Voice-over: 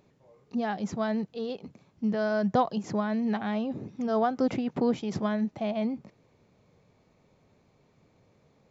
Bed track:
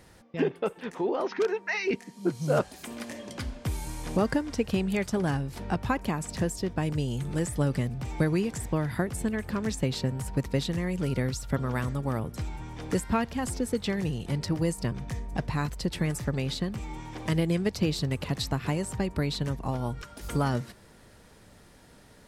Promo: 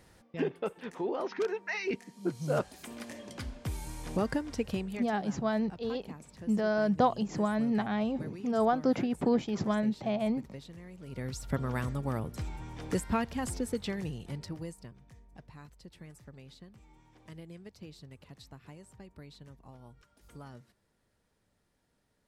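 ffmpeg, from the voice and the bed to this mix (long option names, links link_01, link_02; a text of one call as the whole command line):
ffmpeg -i stem1.wav -i stem2.wav -filter_complex "[0:a]adelay=4450,volume=-1dB[link_01];[1:a]volume=10dB,afade=type=out:start_time=4.66:duration=0.45:silence=0.211349,afade=type=in:start_time=11.05:duration=0.45:silence=0.177828,afade=type=out:start_time=13.5:duration=1.45:silence=0.125893[link_02];[link_01][link_02]amix=inputs=2:normalize=0" out.wav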